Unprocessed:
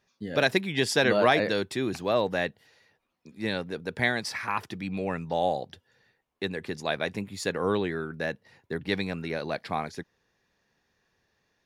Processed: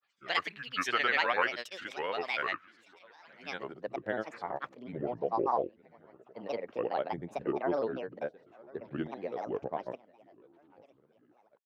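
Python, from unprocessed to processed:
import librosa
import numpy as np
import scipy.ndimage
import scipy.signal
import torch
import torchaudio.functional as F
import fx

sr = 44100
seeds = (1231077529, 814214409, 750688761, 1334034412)

y = fx.echo_feedback(x, sr, ms=960, feedback_pct=53, wet_db=-23.5)
y = fx.filter_sweep_bandpass(y, sr, from_hz=1900.0, to_hz=540.0, start_s=3.18, end_s=3.98, q=1.2)
y = fx.granulator(y, sr, seeds[0], grain_ms=100.0, per_s=20.0, spray_ms=100.0, spread_st=7)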